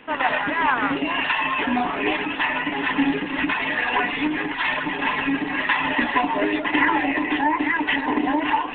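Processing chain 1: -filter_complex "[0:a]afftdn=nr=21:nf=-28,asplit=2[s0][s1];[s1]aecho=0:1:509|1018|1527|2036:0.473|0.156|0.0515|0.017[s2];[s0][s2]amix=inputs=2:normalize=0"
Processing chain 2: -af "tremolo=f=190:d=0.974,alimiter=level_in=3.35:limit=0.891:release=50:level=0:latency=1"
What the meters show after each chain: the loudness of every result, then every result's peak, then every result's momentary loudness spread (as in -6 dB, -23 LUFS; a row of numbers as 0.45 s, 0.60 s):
-21.5 LUFS, -15.5 LUFS; -5.5 dBFS, -1.0 dBFS; 3 LU, 3 LU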